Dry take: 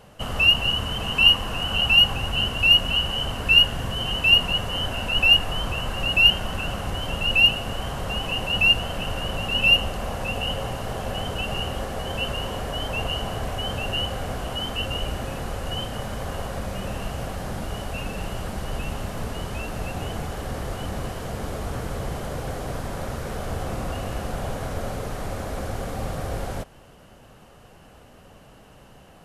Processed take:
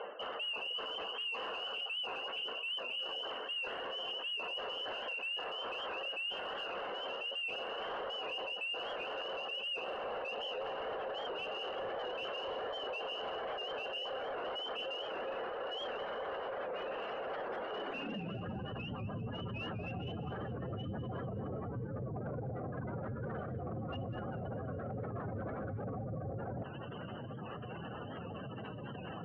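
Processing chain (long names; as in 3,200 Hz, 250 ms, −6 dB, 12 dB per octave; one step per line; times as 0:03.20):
parametric band 670 Hz −6.5 dB 1.2 octaves
reversed playback
downward compressor 10 to 1, threshold −37 dBFS, peak gain reduction 26 dB
reversed playback
high-pass filter sweep 470 Hz → 110 Hz, 0:17.71–0:18.48
gate on every frequency bin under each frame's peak −20 dB strong
mid-hump overdrive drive 21 dB, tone 2,100 Hz, clips at −24 dBFS
high-frequency loss of the air 160 metres
on a send: delay with a high-pass on its return 200 ms, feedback 46%, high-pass 1,800 Hz, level −11.5 dB
on the sum: brickwall limiter −34.5 dBFS, peak gain reduction 8 dB
hum removal 137.9 Hz, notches 29
wow of a warped record 78 rpm, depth 100 cents
level +1 dB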